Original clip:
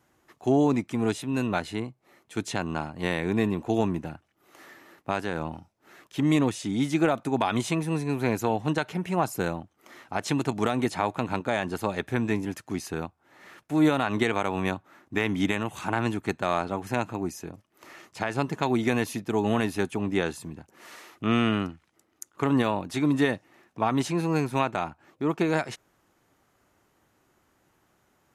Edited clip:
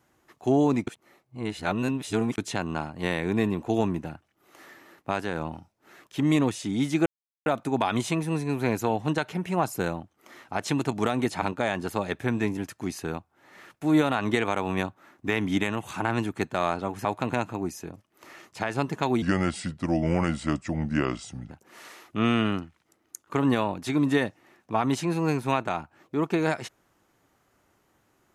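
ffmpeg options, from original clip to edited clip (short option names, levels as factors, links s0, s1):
-filter_complex "[0:a]asplit=9[s0][s1][s2][s3][s4][s5][s6][s7][s8];[s0]atrim=end=0.872[s9];[s1]atrim=start=0.868:end=2.382,asetpts=PTS-STARTPTS,areverse[s10];[s2]atrim=start=2.378:end=7.06,asetpts=PTS-STARTPTS,afade=t=out:st=4.678:d=0.004:c=hsin,apad=pad_dur=0.4[s11];[s3]atrim=start=7.06:end=11.022,asetpts=PTS-STARTPTS,afade=t=in:d=0.004:c=hsin[s12];[s4]atrim=start=11.298:end=16.932[s13];[s5]atrim=start=11.018:end=11.302[s14];[s6]atrim=start=16.928:end=18.824[s15];[s7]atrim=start=18.82:end=20.58,asetpts=PTS-STARTPTS,asetrate=33957,aresample=44100[s16];[s8]atrim=start=20.576[s17];[s9][s10]acrossfade=d=0.004:c1=hsin:c2=hsin[s18];[s11][s12]concat=n=2:v=0:a=1[s19];[s18][s19]acrossfade=d=0.004:c1=hsin:c2=hsin[s20];[s20][s13]acrossfade=d=0.004:c1=hsin:c2=hsin[s21];[s21][s14]acrossfade=d=0.004:c1=hsin:c2=hsin[s22];[s22][s15]acrossfade=d=0.004:c1=hsin:c2=hsin[s23];[s23][s16]acrossfade=d=0.004:c1=hsin:c2=hsin[s24];[s24][s17]acrossfade=d=0.004:c1=hsin:c2=hsin"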